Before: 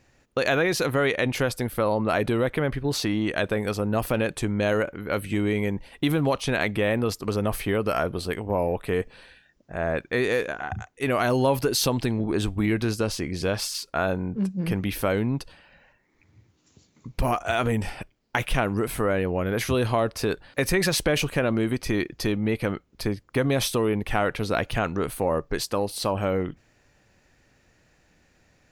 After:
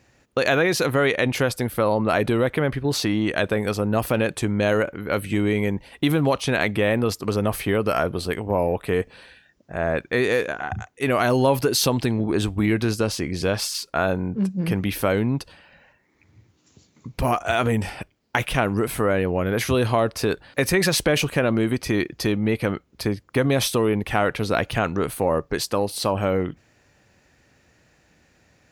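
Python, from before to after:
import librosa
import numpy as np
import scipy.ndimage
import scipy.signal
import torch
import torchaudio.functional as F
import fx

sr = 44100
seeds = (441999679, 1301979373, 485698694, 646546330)

y = scipy.signal.sosfilt(scipy.signal.butter(2, 51.0, 'highpass', fs=sr, output='sos'), x)
y = F.gain(torch.from_numpy(y), 3.0).numpy()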